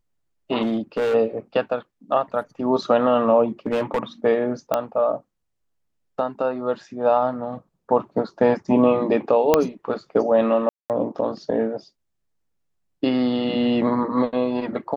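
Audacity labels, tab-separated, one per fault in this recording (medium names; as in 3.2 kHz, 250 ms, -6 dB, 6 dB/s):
0.620000	1.150000	clipped -18.5 dBFS
3.660000	4.030000	clipped -17 dBFS
4.740000	4.740000	pop -8 dBFS
9.540000	9.540000	pop -2 dBFS
10.690000	10.900000	dropout 208 ms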